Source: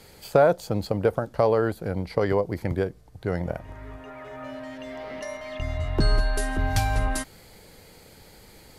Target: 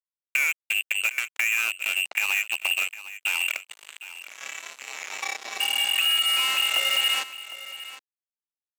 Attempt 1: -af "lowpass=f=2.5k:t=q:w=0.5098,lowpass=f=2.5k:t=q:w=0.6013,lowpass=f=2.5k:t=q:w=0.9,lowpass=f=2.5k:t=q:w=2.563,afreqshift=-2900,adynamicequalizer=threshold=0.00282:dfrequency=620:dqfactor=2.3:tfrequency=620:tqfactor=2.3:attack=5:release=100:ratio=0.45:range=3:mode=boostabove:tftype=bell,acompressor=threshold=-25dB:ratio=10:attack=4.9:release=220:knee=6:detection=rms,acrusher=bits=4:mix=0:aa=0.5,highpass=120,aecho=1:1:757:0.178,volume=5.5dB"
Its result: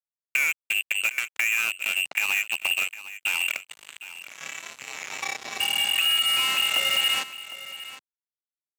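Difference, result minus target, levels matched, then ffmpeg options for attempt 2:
125 Hz band +14.5 dB
-af "lowpass=f=2.5k:t=q:w=0.5098,lowpass=f=2.5k:t=q:w=0.6013,lowpass=f=2.5k:t=q:w=0.9,lowpass=f=2.5k:t=q:w=2.563,afreqshift=-2900,adynamicequalizer=threshold=0.00282:dfrequency=620:dqfactor=2.3:tfrequency=620:tqfactor=2.3:attack=5:release=100:ratio=0.45:range=3:mode=boostabove:tftype=bell,acompressor=threshold=-25dB:ratio=10:attack=4.9:release=220:knee=6:detection=rms,acrusher=bits=4:mix=0:aa=0.5,highpass=370,aecho=1:1:757:0.178,volume=5.5dB"

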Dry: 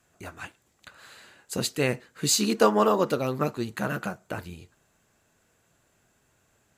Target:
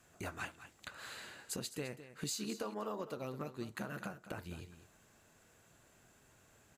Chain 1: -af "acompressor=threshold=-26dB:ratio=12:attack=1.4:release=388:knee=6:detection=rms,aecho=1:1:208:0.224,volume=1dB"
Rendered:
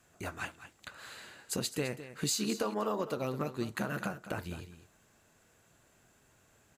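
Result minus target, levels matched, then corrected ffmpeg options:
compressor: peak gain reduction -8 dB
-af "acompressor=threshold=-34.5dB:ratio=12:attack=1.4:release=388:knee=6:detection=rms,aecho=1:1:208:0.224,volume=1dB"

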